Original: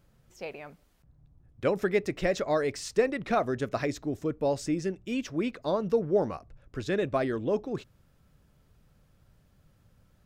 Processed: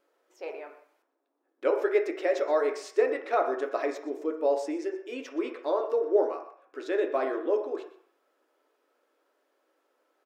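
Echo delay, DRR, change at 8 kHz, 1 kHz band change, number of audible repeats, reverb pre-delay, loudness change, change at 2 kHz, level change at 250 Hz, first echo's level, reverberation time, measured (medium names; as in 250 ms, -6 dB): 123 ms, 3.0 dB, no reading, +1.5 dB, 1, 3 ms, +1.0 dB, -1.0 dB, -4.0 dB, -16.0 dB, 0.60 s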